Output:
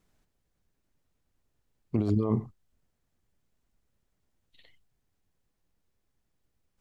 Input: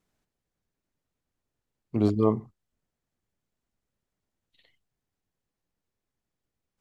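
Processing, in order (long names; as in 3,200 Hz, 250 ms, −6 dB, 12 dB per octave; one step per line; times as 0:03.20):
low-shelf EQ 78 Hz +8.5 dB
compressor whose output falls as the input rises −26 dBFS, ratio −1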